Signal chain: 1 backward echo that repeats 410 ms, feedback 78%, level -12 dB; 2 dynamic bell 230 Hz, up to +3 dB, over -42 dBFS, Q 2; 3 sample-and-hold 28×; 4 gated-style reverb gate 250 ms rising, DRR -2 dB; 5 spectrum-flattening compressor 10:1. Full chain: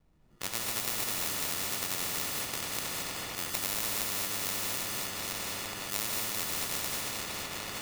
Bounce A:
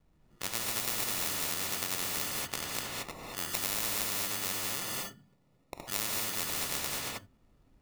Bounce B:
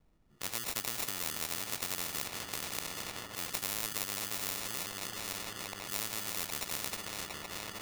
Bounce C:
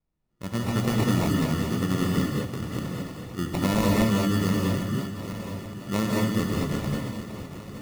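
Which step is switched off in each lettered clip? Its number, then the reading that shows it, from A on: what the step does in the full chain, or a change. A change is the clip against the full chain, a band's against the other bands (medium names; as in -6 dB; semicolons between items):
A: 1, momentary loudness spread change +4 LU; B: 4, loudness change -4.0 LU; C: 5, 250 Hz band +17.5 dB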